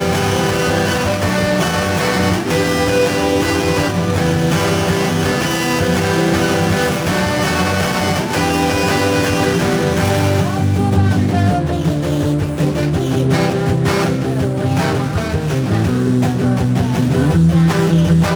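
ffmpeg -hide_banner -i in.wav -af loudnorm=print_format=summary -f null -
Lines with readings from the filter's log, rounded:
Input Integrated:    -15.3 LUFS
Input True Peak:      -1.7 dBTP
Input LRA:             2.1 LU
Input Threshold:     -25.3 LUFS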